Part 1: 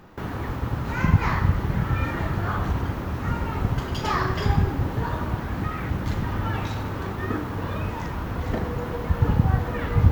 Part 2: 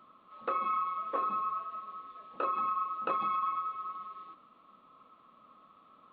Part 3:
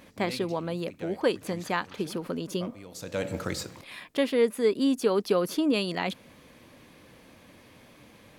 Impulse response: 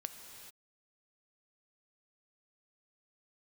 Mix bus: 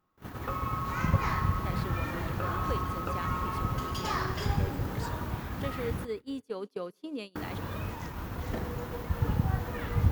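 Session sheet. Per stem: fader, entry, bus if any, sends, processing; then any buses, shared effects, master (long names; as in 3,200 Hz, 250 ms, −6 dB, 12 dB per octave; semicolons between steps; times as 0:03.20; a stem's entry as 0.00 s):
−10.5 dB, 0.00 s, muted 0:06.05–0:07.35, send −6.5 dB, high-shelf EQ 5,300 Hz +10.5 dB
−1.0 dB, 0.00 s, no send, comb filter 7.3 ms; downward compressor, threshold −32 dBFS, peak gain reduction 7 dB
−14.5 dB, 1.45 s, send −8 dB, no processing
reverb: on, pre-delay 3 ms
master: noise gate −37 dBFS, range −22 dB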